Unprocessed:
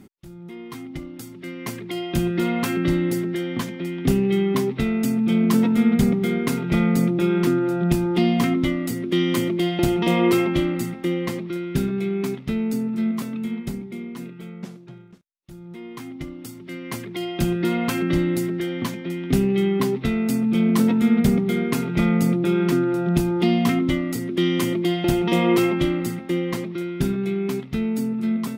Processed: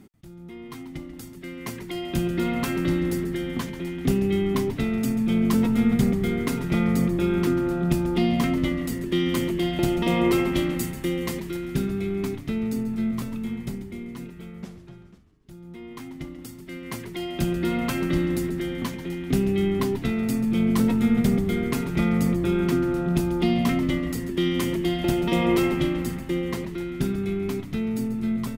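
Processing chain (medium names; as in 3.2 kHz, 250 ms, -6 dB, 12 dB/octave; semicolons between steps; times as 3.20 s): 10.53–11.57 s: treble shelf 4.7 kHz +9 dB; frequency-shifting echo 138 ms, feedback 59%, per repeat -100 Hz, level -13.5 dB; trim -3 dB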